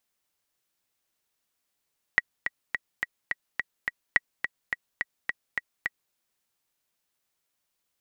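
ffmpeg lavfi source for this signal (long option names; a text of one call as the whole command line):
ffmpeg -f lavfi -i "aevalsrc='pow(10,(-6-8*gte(mod(t,7*60/212),60/212))/20)*sin(2*PI*1920*mod(t,60/212))*exp(-6.91*mod(t,60/212)/0.03)':duration=3.96:sample_rate=44100" out.wav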